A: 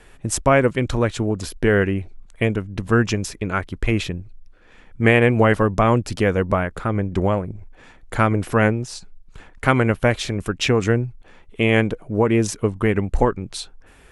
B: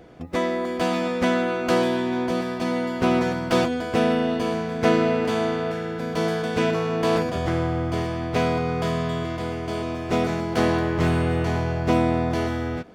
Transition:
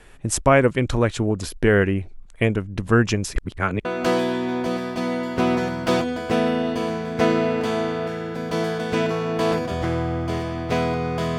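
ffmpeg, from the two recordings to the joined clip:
ffmpeg -i cue0.wav -i cue1.wav -filter_complex "[0:a]apad=whole_dur=11.38,atrim=end=11.38,asplit=2[link_01][link_02];[link_01]atrim=end=3.362[link_03];[link_02]atrim=start=3.358:end=3.852,asetpts=PTS-STARTPTS,areverse[link_04];[1:a]atrim=start=1.488:end=9.02[link_05];[link_03][link_04]acrossfade=duration=0.004:curve1=hsin:curve2=hsin[link_06];[link_06][link_05]acrossfade=duration=0.004:curve1=hsin:curve2=hsin" out.wav

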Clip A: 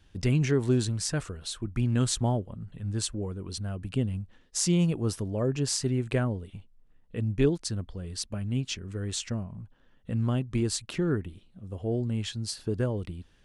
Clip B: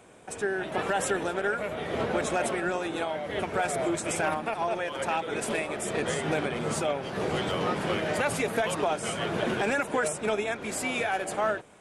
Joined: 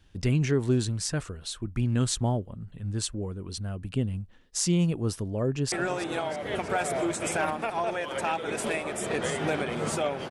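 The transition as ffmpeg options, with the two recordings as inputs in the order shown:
ffmpeg -i cue0.wav -i cue1.wav -filter_complex "[0:a]apad=whole_dur=10.3,atrim=end=10.3,atrim=end=5.722[link_01];[1:a]atrim=start=2.558:end=7.14[link_02];[link_01][link_02]acrossfade=duration=0.004:curve1=hsin:curve2=hsin,asplit=2[link_03][link_04];[link_04]afade=type=in:start_time=5.46:duration=0.01,afade=type=out:start_time=5.72:duration=0.01,aecho=0:1:320|640|960|1280|1600|1920|2240:0.199526|0.129692|0.0842998|0.0547949|0.0356167|0.0231508|0.015048[link_05];[link_03][link_05]amix=inputs=2:normalize=0" out.wav

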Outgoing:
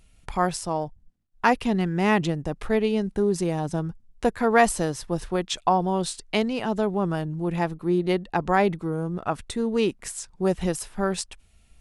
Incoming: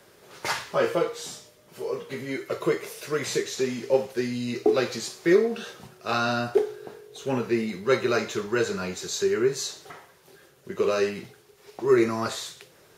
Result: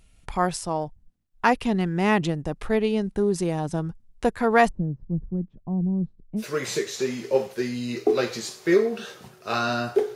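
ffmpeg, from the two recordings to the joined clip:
ffmpeg -i cue0.wav -i cue1.wav -filter_complex "[0:a]asplit=3[link_01][link_02][link_03];[link_01]afade=type=out:start_time=4.67:duration=0.02[link_04];[link_02]lowpass=frequency=190:width_type=q:width=1.6,afade=type=in:start_time=4.67:duration=0.02,afade=type=out:start_time=6.44:duration=0.02[link_05];[link_03]afade=type=in:start_time=6.44:duration=0.02[link_06];[link_04][link_05][link_06]amix=inputs=3:normalize=0,apad=whole_dur=10.15,atrim=end=10.15,atrim=end=6.44,asetpts=PTS-STARTPTS[link_07];[1:a]atrim=start=2.95:end=6.74,asetpts=PTS-STARTPTS[link_08];[link_07][link_08]acrossfade=duration=0.08:curve1=tri:curve2=tri" out.wav

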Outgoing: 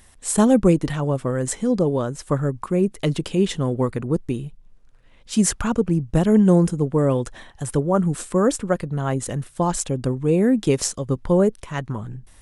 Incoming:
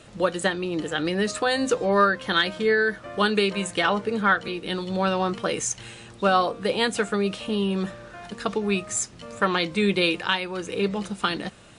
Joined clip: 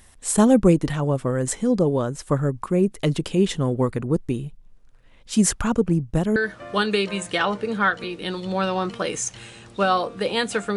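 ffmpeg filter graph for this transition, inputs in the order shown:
ffmpeg -i cue0.wav -i cue1.wav -filter_complex "[0:a]asettb=1/sr,asplit=3[link_01][link_02][link_03];[link_01]atrim=end=5.924[link_04];[link_02]atrim=start=5.92:end=6.36,asetpts=PTS-STARTPTS,afade=type=in:duration=0.004:curve=qsin,afade=type=out:start_time=0.436:duration=0.004:curve=qsin,aeval=exprs='val(0)*pow(10,-20*if(lt(mod(0.64*n/s,1),2*abs(0.64)/1000),1-mod(0.64*n/s,1)/(2*abs(0.64)/1000),(mod(0.64*n/s,1)-2*abs(0.64)/1000)/(1-2*abs(0.64)/1000))/20)':channel_layout=same[link_05];[link_03]atrim=start=6.356[link_06];[link_04][link_05]acrossfade=duration=0.004:curve1=hsin:curve2=qsin[link_07];[link_07][link_06]acrossfade=duration=0.004:curve1=qsin:curve2=hsin,apad=whole_dur=10.76,atrim=end=10.76,atrim=end=6.362[link_08];[1:a]atrim=start=2.798:end=7.2[link_09];[link_08][link_09]acrossfade=duration=0.004:curve1=hsin:curve2=hsin" out.wav

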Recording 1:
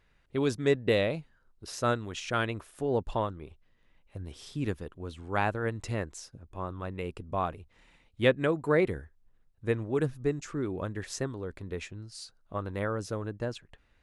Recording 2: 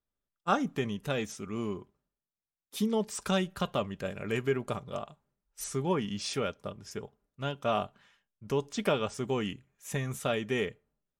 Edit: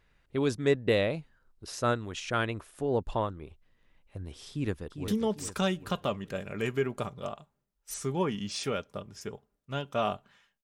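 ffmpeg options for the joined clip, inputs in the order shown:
ffmpeg -i cue0.wav -i cue1.wav -filter_complex "[0:a]apad=whole_dur=10.63,atrim=end=10.63,atrim=end=5.082[link_01];[1:a]atrim=start=2.778:end=8.33[link_02];[link_01][link_02]acrossfade=duration=0.004:curve1=hsin:curve2=hsin,asplit=2[link_03][link_04];[link_04]afade=type=in:start_time=4.5:duration=0.01,afade=type=out:start_time=5.08:duration=0.01,aecho=0:1:400|800|1200|1600|2000:0.421697|0.189763|0.0853935|0.0384271|0.0172922[link_05];[link_03][link_05]amix=inputs=2:normalize=0" out.wav

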